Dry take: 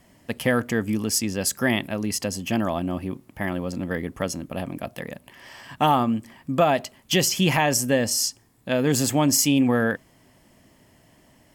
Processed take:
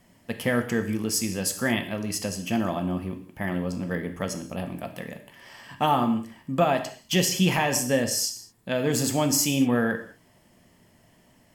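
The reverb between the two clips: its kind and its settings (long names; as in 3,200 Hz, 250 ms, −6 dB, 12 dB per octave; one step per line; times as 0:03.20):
reverb whose tail is shaped and stops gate 240 ms falling, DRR 6 dB
level −3.5 dB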